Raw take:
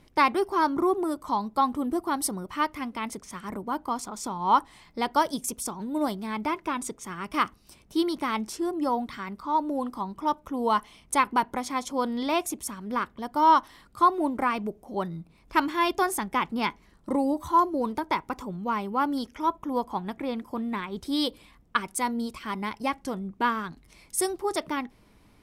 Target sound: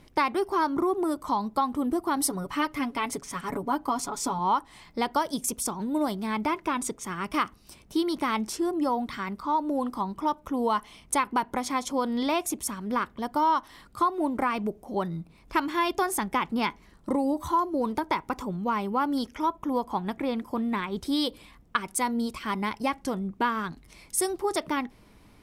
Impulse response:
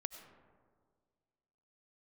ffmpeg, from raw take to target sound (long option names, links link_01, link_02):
-filter_complex "[0:a]asettb=1/sr,asplit=3[link_01][link_02][link_03];[link_01]atrim=end=2.164[link_04];[link_02]atrim=start=2.16:end=4.39,asetpts=PTS-STARTPTS,afade=type=in:duration=0.004:curve=qsin,afade=type=out:start_time=2.226:duration=0.004:curve=qsin,aecho=1:1:7.1:0.7,atrim=end_sample=98343[link_05];[link_03]atrim=start=4.386[link_06];[link_04][link_05]acrossfade=duration=0.004:curve1=hsin:curve2=qsin[link_07];[link_07][link_06]acrossfade=duration=0.004:curve1=qsin:curve2=hsin,acompressor=threshold=-26dB:ratio=3,volume=3dB"